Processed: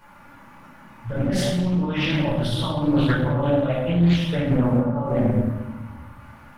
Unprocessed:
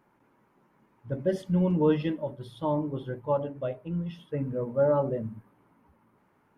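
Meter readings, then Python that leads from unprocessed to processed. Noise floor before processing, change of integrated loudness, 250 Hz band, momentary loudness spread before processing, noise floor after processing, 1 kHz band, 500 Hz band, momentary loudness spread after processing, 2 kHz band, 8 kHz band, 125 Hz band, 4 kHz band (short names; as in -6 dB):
-67 dBFS, +7.5 dB, +9.0 dB, 11 LU, -47 dBFS, +5.0 dB, +2.5 dB, 13 LU, +16.0 dB, n/a, +11.0 dB, +19.5 dB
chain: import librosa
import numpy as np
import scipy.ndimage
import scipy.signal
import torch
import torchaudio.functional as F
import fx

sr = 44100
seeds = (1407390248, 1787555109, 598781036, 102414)

y = fx.peak_eq(x, sr, hz=360.0, db=-15.0, octaves=1.5)
y = y + 0.45 * np.pad(y, (int(3.5 * sr / 1000.0), 0))[:len(y)]
y = fx.over_compress(y, sr, threshold_db=-41.0, ratio=-1.0)
y = fx.room_shoebox(y, sr, seeds[0], volume_m3=550.0, walls='mixed', distance_m=4.8)
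y = fx.doppler_dist(y, sr, depth_ms=0.41)
y = F.gain(torch.from_numpy(y), 7.0).numpy()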